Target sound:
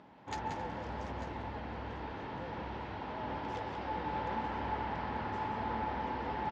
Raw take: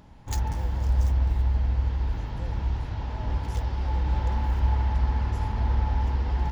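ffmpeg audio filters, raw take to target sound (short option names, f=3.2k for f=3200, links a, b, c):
-filter_complex "[0:a]highpass=260,lowpass=2.9k,asplit=2[a][b];[b]aecho=0:1:180|269|894:0.422|0.106|0.224[c];[a][c]amix=inputs=2:normalize=0"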